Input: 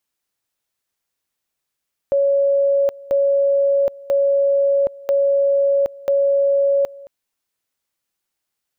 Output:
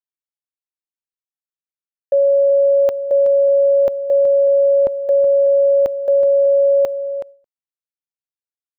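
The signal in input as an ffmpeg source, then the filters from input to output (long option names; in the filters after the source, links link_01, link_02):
-f lavfi -i "aevalsrc='pow(10,(-13-22*gte(mod(t,0.99),0.77))/20)*sin(2*PI*558*t)':duration=4.95:sample_rate=44100"
-filter_complex "[0:a]asplit=2[link_01][link_02];[link_02]alimiter=limit=-22dB:level=0:latency=1:release=34,volume=2dB[link_03];[link_01][link_03]amix=inputs=2:normalize=0,agate=range=-33dB:threshold=-20dB:ratio=3:detection=peak,asplit=2[link_04][link_05];[link_05]adelay=373.2,volume=-10dB,highshelf=frequency=4000:gain=-8.4[link_06];[link_04][link_06]amix=inputs=2:normalize=0"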